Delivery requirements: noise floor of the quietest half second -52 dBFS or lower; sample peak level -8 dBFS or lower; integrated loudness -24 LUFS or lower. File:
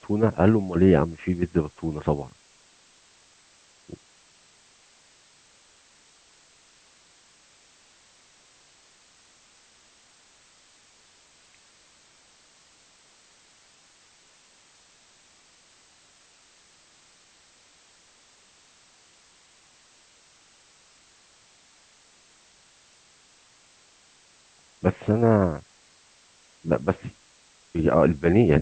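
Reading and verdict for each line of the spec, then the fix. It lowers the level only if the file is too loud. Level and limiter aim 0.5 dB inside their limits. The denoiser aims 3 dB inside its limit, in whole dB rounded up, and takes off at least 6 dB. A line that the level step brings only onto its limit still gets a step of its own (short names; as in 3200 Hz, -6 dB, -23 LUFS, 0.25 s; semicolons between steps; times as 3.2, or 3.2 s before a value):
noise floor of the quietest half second -58 dBFS: OK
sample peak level -4.5 dBFS: fail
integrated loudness -23.0 LUFS: fail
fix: gain -1.5 dB; limiter -8.5 dBFS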